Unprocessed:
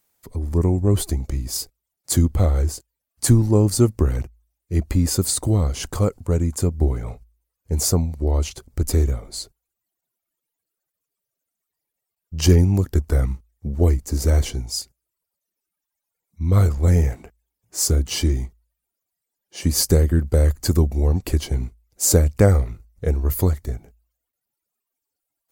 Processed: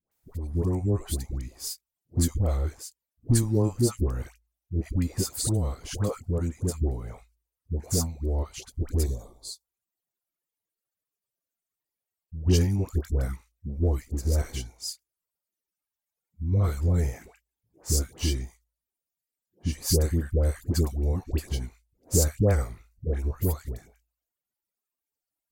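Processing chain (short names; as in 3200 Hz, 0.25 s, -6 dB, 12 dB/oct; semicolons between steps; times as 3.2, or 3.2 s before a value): 8.96–9.55 spectral gain 1200–3200 Hz -17 dB; 18.33–19.8 bell 3300 Hz -> 420 Hz -6 dB 1.5 oct; dispersion highs, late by 0.115 s, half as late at 820 Hz; gain -7.5 dB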